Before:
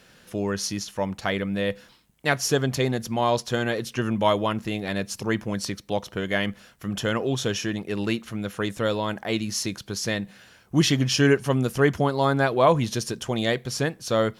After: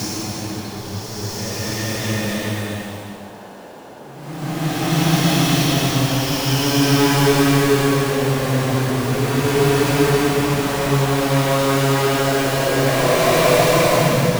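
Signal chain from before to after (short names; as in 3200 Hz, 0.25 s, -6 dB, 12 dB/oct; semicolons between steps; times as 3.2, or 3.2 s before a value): half-waves squared off; Paulstretch 4.5×, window 0.50 s, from 9.64; band noise 170–920 Hz -39 dBFS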